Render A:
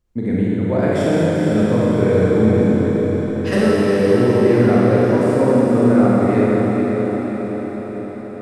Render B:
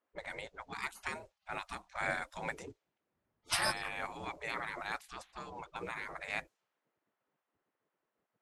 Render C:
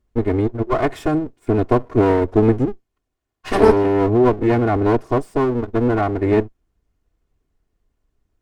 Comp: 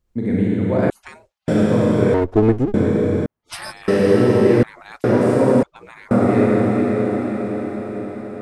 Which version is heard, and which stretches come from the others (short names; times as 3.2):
A
0.9–1.48 from B
2.14–2.74 from C
3.26–3.88 from B
4.63–5.04 from B
5.63–6.11 from B